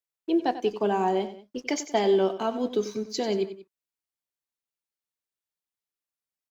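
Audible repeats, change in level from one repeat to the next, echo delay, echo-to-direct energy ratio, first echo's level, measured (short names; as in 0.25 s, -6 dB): 2, -6.5 dB, 93 ms, -12.0 dB, -13.0 dB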